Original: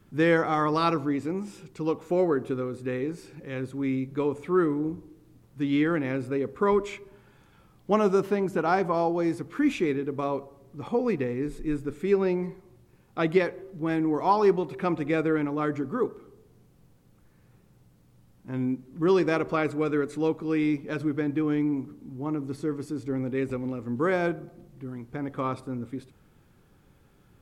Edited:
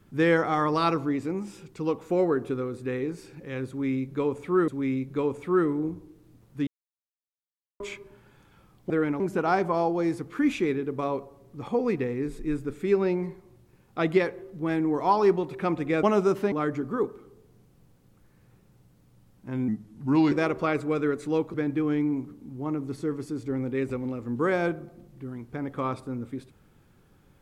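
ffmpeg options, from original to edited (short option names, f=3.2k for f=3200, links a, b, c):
-filter_complex "[0:a]asplit=11[a][b][c][d][e][f][g][h][i][j][k];[a]atrim=end=4.682[l];[b]atrim=start=3.688:end=5.68,asetpts=PTS-STARTPTS,afade=t=out:st=1.988:d=0.004:c=hsin[m];[c]atrim=start=5.68:end=6.81,asetpts=PTS-STARTPTS,volume=0[n];[d]atrim=start=6.81:end=7.912,asetpts=PTS-STARTPTS,afade=t=in:d=0.004:c=hsin[o];[e]atrim=start=15.228:end=15.532[p];[f]atrim=start=8.398:end=15.232[q];[g]atrim=start=7.908:end=8.402[r];[h]atrim=start=15.528:end=18.694[s];[i]atrim=start=18.69:end=19.22,asetpts=PTS-STARTPTS,asetrate=36603,aresample=44100,atrim=end_sample=28160,asetpts=PTS-STARTPTS[t];[j]atrim=start=19.216:end=20.442[u];[k]atrim=start=21.138[v];[m][n][o]concat=n=3:v=0:a=1[w];[l][w]acrossfade=d=0.004:c1=hsin:c2=hsin[x];[x][p]acrossfade=d=0.004:c1=hsin:c2=hsin[y];[y][q]acrossfade=d=0.004:c1=hsin:c2=hsin[z];[z][r]acrossfade=d=0.004:c1=hsin:c2=hsin[aa];[aa][s]acrossfade=d=0.004:c1=hsin:c2=hsin[ab];[ab][t]acrossfade=d=0.004:c1=hsin:c2=hsin[ac];[ac][u]acrossfade=d=0.004:c1=hsin:c2=hsin[ad];[ad][v]acrossfade=d=0.004:c1=hsin:c2=hsin"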